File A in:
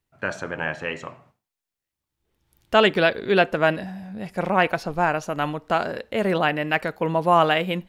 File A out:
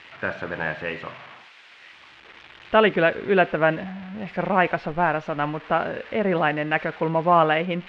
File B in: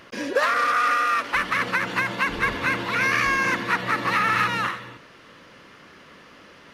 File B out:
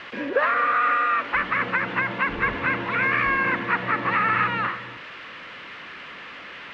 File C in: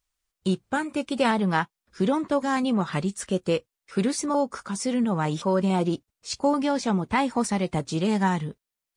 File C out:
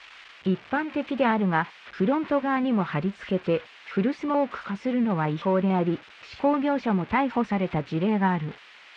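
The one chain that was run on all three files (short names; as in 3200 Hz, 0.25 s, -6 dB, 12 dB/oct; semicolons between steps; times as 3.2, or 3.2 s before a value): switching spikes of -18.5 dBFS; LPF 2600 Hz 24 dB/oct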